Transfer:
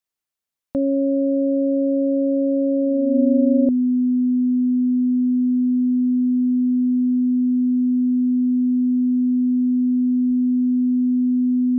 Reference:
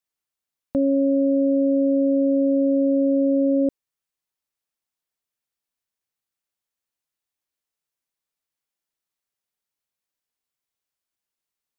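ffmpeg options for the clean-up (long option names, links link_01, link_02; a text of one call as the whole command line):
ffmpeg -i in.wav -filter_complex "[0:a]bandreject=frequency=250:width=30,asplit=3[link_01][link_02][link_03];[link_01]afade=type=out:start_time=10.27:duration=0.02[link_04];[link_02]highpass=frequency=140:width=0.5412,highpass=frequency=140:width=1.3066,afade=type=in:start_time=10.27:duration=0.02,afade=type=out:start_time=10.39:duration=0.02[link_05];[link_03]afade=type=in:start_time=10.39:duration=0.02[link_06];[link_04][link_05][link_06]amix=inputs=3:normalize=0,asetnsamples=nb_out_samples=441:pad=0,asendcmd='5.24 volume volume -9dB',volume=0dB" out.wav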